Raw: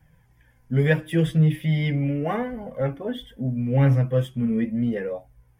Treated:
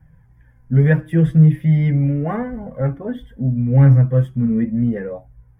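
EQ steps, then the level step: tone controls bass +9 dB, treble +1 dB; resonant high shelf 2.2 kHz -8.5 dB, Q 1.5; 0.0 dB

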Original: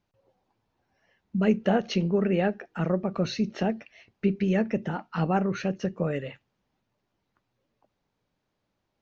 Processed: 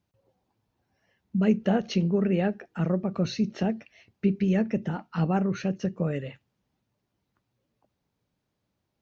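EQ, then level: high-pass 52 Hz; bass shelf 290 Hz +8.5 dB; treble shelf 3.9 kHz +6 dB; -4.5 dB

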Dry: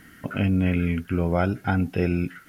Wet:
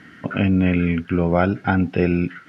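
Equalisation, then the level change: band-pass 110–4100 Hz; +5.5 dB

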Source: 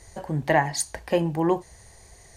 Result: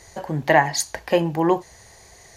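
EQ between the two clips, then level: bass shelf 66 Hz -9.5 dB; bass shelf 460 Hz -4 dB; peaking EQ 8.7 kHz -11.5 dB 0.21 oct; +6.0 dB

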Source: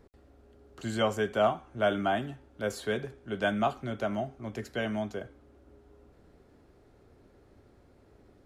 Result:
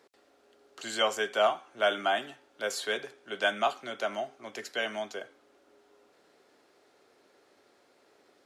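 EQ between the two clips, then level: high-pass 440 Hz 12 dB/octave; peaking EQ 4.8 kHz +8 dB 2.8 oct; 0.0 dB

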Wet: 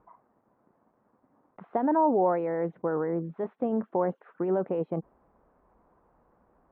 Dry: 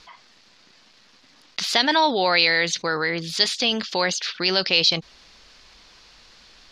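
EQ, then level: inverse Chebyshev low-pass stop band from 4.4 kHz, stop band 70 dB; dynamic bell 290 Hz, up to +5 dB, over -38 dBFS, Q 0.72; high-pass 87 Hz 6 dB/octave; -4.0 dB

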